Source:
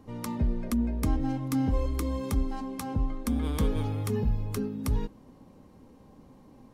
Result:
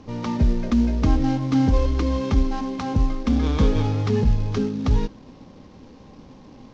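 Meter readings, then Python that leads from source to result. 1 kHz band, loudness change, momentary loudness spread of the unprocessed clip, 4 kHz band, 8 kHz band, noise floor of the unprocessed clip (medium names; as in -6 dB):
+8.0 dB, +8.0 dB, 5 LU, +9.0 dB, -1.0 dB, -55 dBFS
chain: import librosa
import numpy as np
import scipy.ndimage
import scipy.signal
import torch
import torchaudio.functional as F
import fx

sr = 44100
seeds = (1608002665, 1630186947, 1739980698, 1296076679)

y = fx.cvsd(x, sr, bps=32000)
y = F.gain(torch.from_numpy(y), 8.5).numpy()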